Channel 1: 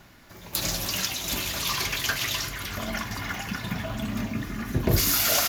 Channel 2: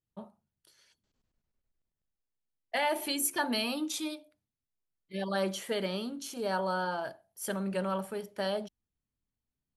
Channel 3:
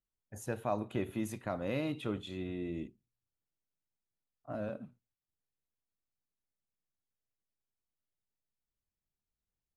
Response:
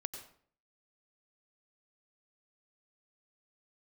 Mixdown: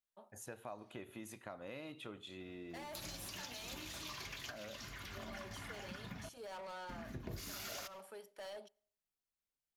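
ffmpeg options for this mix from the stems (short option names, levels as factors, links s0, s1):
-filter_complex "[0:a]highshelf=f=9800:g=-11,adelay=2400,volume=0.224,asplit=3[s0][s1][s2];[s0]atrim=end=6.29,asetpts=PTS-STARTPTS,afade=t=out:st=6.286:d=0.004:c=hsin[s3];[s1]atrim=start=6.29:end=6.89,asetpts=PTS-STARTPTS,volume=0[s4];[s2]atrim=start=6.89,asetpts=PTS-STARTPTS,afade=t=in:d=0.004:c=hsin[s5];[s3][s4][s5]concat=n=3:v=0:a=1,asplit=2[s6][s7];[s7]volume=0.188[s8];[1:a]highpass=440,asoftclip=type=hard:threshold=0.02,volume=0.316,asplit=2[s9][s10];[s10]volume=0.0668[s11];[2:a]lowshelf=f=370:g=-11,volume=0.708,asplit=3[s12][s13][s14];[s13]volume=0.126[s15];[s14]apad=whole_len=347548[s16];[s6][s16]sidechaincompress=threshold=0.00282:ratio=8:attack=16:release=236[s17];[3:a]atrim=start_sample=2205[s18];[s8][s11][s15]amix=inputs=3:normalize=0[s19];[s19][s18]afir=irnorm=-1:irlink=0[s20];[s17][s9][s12][s20]amix=inputs=4:normalize=0,acompressor=threshold=0.00501:ratio=3"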